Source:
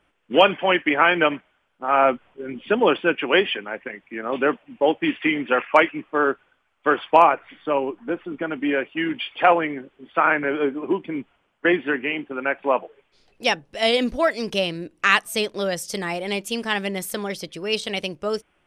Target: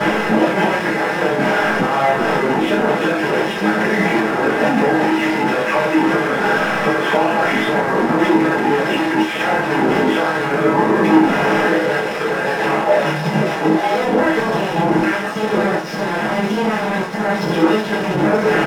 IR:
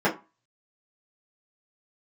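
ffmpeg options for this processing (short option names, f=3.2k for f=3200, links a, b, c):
-filter_complex "[0:a]aeval=exprs='val(0)+0.5*0.075*sgn(val(0))':c=same,acompressor=threshold=-18dB:ratio=6,aecho=1:1:65|130|195|260:0.708|0.177|0.0442|0.0111,asettb=1/sr,asplit=3[a][b][c];[a]atrim=end=11.724[d];[b]atrim=start=11.72:end=13.94,asetpts=PTS-STARTPTS,afade=t=in:d=0.004:c=qsin,afade=t=out:st=2.216:d=0.004:c=qsin,afreqshift=150[e];[c]atrim=start=13.936[f];[d][e]acrossfade=d=0.004:c1=hsin:c2=qsin[g];[g][f]acrossfade=d=0.004:c1=qsin:c2=hsin,aeval=exprs='0.398*(cos(1*acos(clip(val(0)/0.398,-1,1)))-cos(1*PI/2))+0.141*(cos(7*acos(clip(val(0)/0.398,-1,1)))-cos(7*PI/2))':c=same,alimiter=limit=-18.5dB:level=0:latency=1:release=51,lowpass=6.2k,asplit=2[h][i];[i]adelay=28,volume=-6dB[j];[h][j]amix=inputs=2:normalize=0[k];[1:a]atrim=start_sample=2205[l];[k][l]afir=irnorm=-1:irlink=0,adynamicsmooth=sensitivity=7.5:basefreq=1.6k,volume=-5.5dB"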